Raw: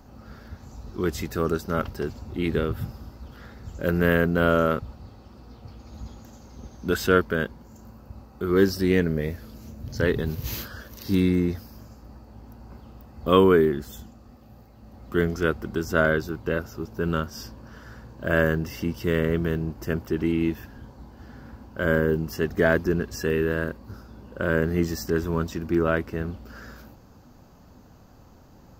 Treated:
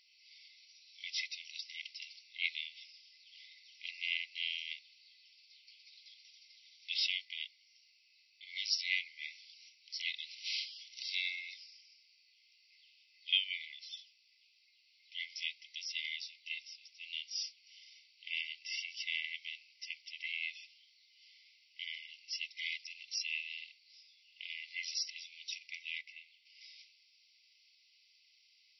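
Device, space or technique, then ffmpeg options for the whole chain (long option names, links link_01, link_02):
filter by subtraction: -filter_complex "[0:a]asettb=1/sr,asplit=3[link_01][link_02][link_03];[link_01]atrim=end=26.014[link_04];[link_02]atrim=start=26.01:end=26.61,asetpts=PTS-STARTPTS,afade=type=in:duration=0.004:curve=qsin,afade=type=out:start_time=0.596:duration=0.004:curve=qsin,lowpass=frequency=2300:poles=1[link_05];[link_03]atrim=start=26.606[link_06];[link_04][link_05]acrossfade=duration=0.004:curve1=hsin:curve2=qsin[link_07];[link_07][link_06]acrossfade=duration=0.004:curve1=qsin:curve2=hsin,asplit=2[link_08][link_09];[link_09]lowpass=2800,volume=-1[link_10];[link_08][link_10]amix=inputs=2:normalize=0,afftfilt=real='re*between(b*sr/4096,2000,5800)':imag='im*between(b*sr/4096,2000,5800)':win_size=4096:overlap=0.75,volume=1dB"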